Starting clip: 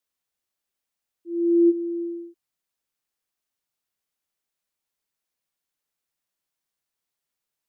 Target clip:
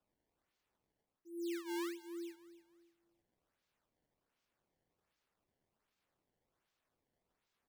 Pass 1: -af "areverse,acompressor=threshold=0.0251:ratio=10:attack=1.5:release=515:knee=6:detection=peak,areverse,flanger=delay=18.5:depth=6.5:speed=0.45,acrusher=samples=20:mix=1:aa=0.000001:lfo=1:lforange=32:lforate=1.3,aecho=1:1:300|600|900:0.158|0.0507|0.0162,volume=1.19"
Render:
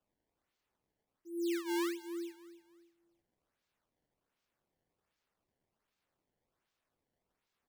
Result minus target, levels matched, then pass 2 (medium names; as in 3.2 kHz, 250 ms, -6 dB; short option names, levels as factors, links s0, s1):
compression: peak gain reduction -6 dB
-af "areverse,acompressor=threshold=0.0119:ratio=10:attack=1.5:release=515:knee=6:detection=peak,areverse,flanger=delay=18.5:depth=6.5:speed=0.45,acrusher=samples=20:mix=1:aa=0.000001:lfo=1:lforange=32:lforate=1.3,aecho=1:1:300|600|900:0.158|0.0507|0.0162,volume=1.19"